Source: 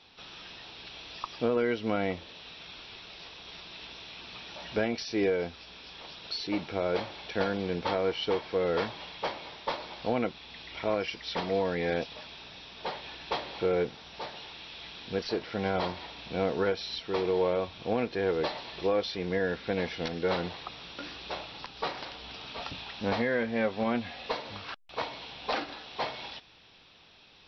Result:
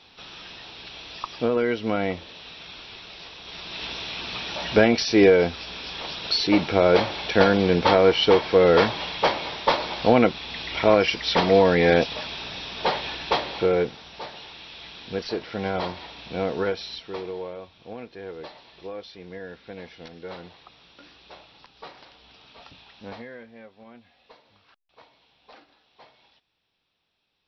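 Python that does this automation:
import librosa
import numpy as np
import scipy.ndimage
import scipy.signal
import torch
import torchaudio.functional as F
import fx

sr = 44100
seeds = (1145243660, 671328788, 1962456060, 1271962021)

y = fx.gain(x, sr, db=fx.line((3.41, 4.5), (3.86, 12.0), (12.98, 12.0), (14.2, 2.5), (16.78, 2.5), (17.55, -9.0), (23.09, -9.0), (23.7, -19.0)))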